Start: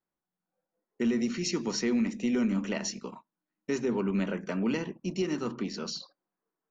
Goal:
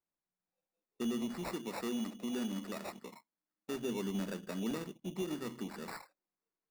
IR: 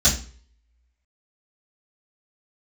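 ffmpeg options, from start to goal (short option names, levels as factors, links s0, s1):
-filter_complex "[0:a]acrusher=samples=14:mix=1:aa=0.000001,asettb=1/sr,asplit=3[s0][s1][s2];[s0]atrim=end=1.534[s3];[s1]atrim=start=1.53:end=3.74,asetpts=PTS-STARTPTS,afade=t=in:d=0.004:c=qsin,afade=t=out:st=2.206:d=0.004:c=qsin,lowshelf=f=140:g=-8.5[s4];[s2]atrim=start=3.736[s5];[s3][s4]acrossfade=d=0.004:c1=hsin:c2=qsin[s6];[s6][s5]acrossfade=d=0.004:c1=qsin:c2=hsin,volume=0.398"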